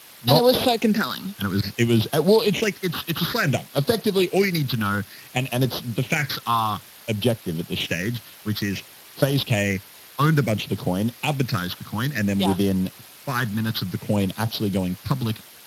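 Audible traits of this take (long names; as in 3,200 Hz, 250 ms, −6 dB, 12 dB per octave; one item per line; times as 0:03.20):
aliases and images of a low sample rate 8,700 Hz, jitter 0%
phaser sweep stages 6, 0.57 Hz, lowest notch 560–2,200 Hz
a quantiser's noise floor 8 bits, dither triangular
Speex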